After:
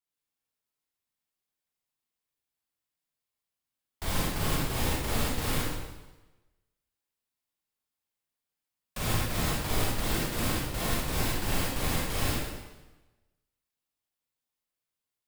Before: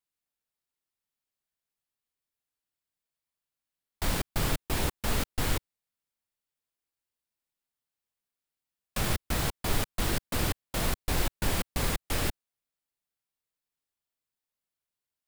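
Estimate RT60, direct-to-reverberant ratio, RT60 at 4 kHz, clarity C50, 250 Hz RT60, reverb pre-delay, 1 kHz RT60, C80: 1.1 s, −6.0 dB, 1.0 s, −2.5 dB, 1.1 s, 33 ms, 1.1 s, 0.5 dB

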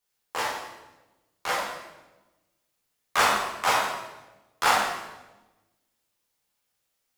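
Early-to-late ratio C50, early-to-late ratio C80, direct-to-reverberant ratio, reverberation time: 0.5 dB, 3.0 dB, −7.5 dB, 1.1 s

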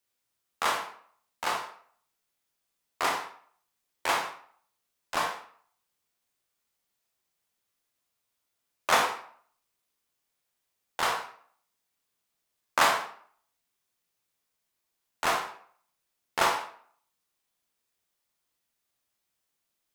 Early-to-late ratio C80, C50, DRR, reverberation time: 10.5 dB, 6.5 dB, 1.0 dB, 0.55 s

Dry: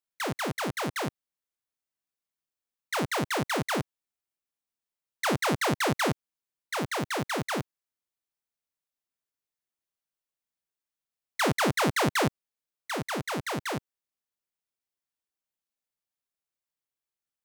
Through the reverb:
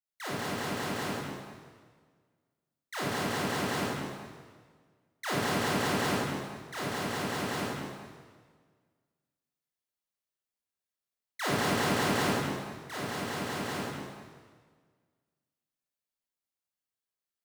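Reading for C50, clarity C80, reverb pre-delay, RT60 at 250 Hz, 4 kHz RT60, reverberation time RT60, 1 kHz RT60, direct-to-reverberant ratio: −3.5 dB, −1.0 dB, 23 ms, 1.6 s, 1.5 s, 1.6 s, 1.6 s, −9.5 dB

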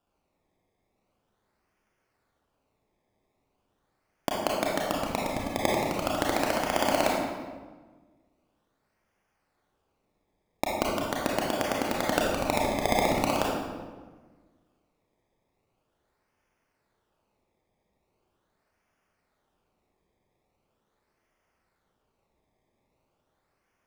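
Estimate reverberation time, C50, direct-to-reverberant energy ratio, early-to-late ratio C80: 1.4 s, −1.0 dB, −3.5 dB, 2.5 dB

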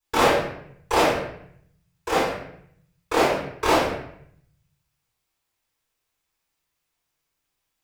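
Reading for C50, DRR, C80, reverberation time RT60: 1.5 dB, −14.0 dB, 5.0 dB, 0.65 s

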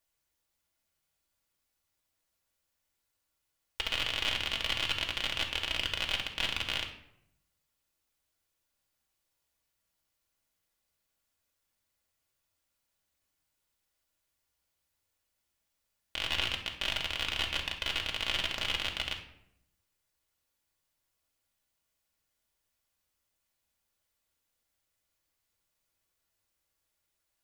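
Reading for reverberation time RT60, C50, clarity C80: 0.75 s, 8.0 dB, 12.0 dB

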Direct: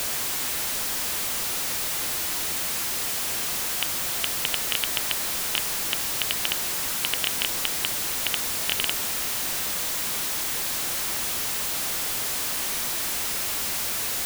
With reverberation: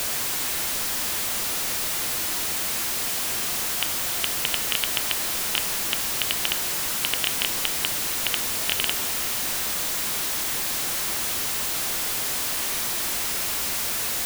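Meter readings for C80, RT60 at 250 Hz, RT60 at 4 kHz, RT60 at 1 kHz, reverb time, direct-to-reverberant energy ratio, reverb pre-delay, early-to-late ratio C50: 13.0 dB, 3.8 s, 1.4 s, 2.2 s, 2.4 s, 10.5 dB, 3 ms, 12.0 dB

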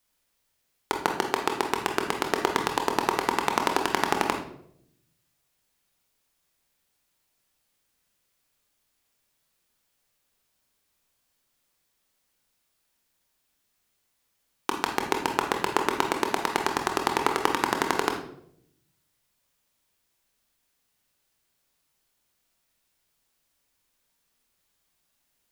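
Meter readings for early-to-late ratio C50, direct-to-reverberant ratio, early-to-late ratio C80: 6.5 dB, 3.0 dB, 10.5 dB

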